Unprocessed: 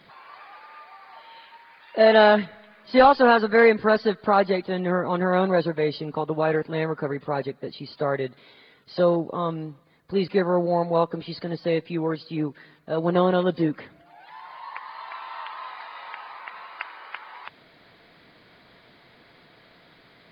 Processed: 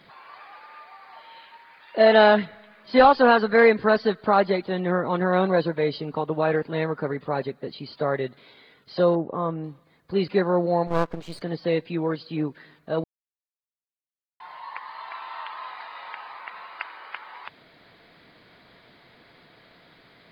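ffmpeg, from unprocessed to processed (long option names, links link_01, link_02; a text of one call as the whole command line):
ffmpeg -i in.wav -filter_complex "[0:a]asettb=1/sr,asplit=3[link_01][link_02][link_03];[link_01]atrim=end=9.154[link_04];[link_02]atrim=start=9.15:end=9.64,asetpts=PTS-STARTPTS,afade=type=in:duration=0.004:curve=qsin,afade=type=out:start_time=0.486:duration=0.004:curve=qsin,lowpass=1800[link_05];[link_03]atrim=start=9.636[link_06];[link_04][link_05]acrossfade=duration=0.004:curve1=hsin:curve2=qsin[link_07];[link_07][link_06]acrossfade=duration=0.004:curve1=qsin:curve2=hsin,asettb=1/sr,asplit=3[link_08][link_09][link_10];[link_08]atrim=end=10.874[link_11];[link_09]atrim=start=10.87:end=11.42,asetpts=PTS-STARTPTS,afade=type=in:duration=0.004:curve=qsin,afade=type=out:start_time=0.546:duration=0.004:curve=qsin,aeval=exprs='max(val(0),0)':channel_layout=same[link_12];[link_10]atrim=start=11.416[link_13];[link_11][link_12]acrossfade=duration=0.004:curve1=hsin:curve2=qsin[link_14];[link_14][link_13]acrossfade=duration=0.004:curve1=qsin:curve2=hsin,asplit=3[link_15][link_16][link_17];[link_15]atrim=end=13.04,asetpts=PTS-STARTPTS,afade=type=out:start_time=13.036:duration=0.004:curve=hsin[link_18];[link_16]atrim=start=13.04:end=14.4,asetpts=PTS-STARTPTS,volume=0[link_19];[link_17]atrim=start=14.4,asetpts=PTS-STARTPTS,afade=type=in:duration=0.004:curve=hsin[link_20];[link_18][link_19][link_20]concat=n=3:v=0:a=1" out.wav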